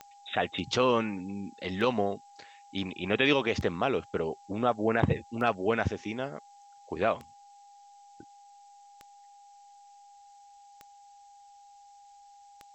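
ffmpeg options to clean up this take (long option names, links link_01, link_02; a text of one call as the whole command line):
ffmpeg -i in.wav -af "adeclick=threshold=4,bandreject=frequency=810:width=30,afftdn=noise_reduction=20:noise_floor=-55" out.wav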